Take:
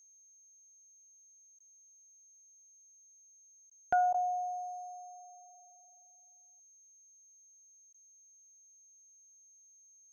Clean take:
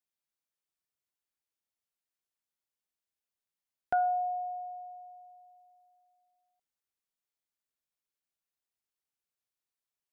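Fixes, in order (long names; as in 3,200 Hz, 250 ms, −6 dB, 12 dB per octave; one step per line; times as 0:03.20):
notch filter 6,400 Hz, Q 30
repair the gap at 0:01.59/0:03.70/0:04.13/0:07.93, 11 ms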